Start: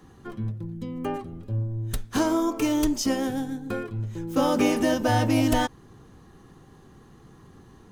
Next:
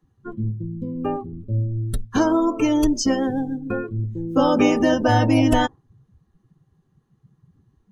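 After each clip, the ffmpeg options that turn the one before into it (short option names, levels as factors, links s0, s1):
-af "afftdn=nr=25:nf=-34,volume=1.78"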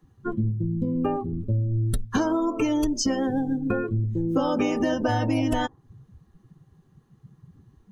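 -af "acompressor=threshold=0.0447:ratio=6,volume=1.88"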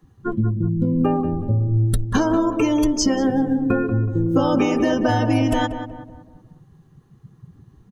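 -filter_complex "[0:a]asplit=2[s0][s1];[s1]adelay=186,lowpass=f=1500:p=1,volume=0.376,asplit=2[s2][s3];[s3]adelay=186,lowpass=f=1500:p=1,volume=0.45,asplit=2[s4][s5];[s5]adelay=186,lowpass=f=1500:p=1,volume=0.45,asplit=2[s6][s7];[s7]adelay=186,lowpass=f=1500:p=1,volume=0.45,asplit=2[s8][s9];[s9]adelay=186,lowpass=f=1500:p=1,volume=0.45[s10];[s0][s2][s4][s6][s8][s10]amix=inputs=6:normalize=0,volume=1.68"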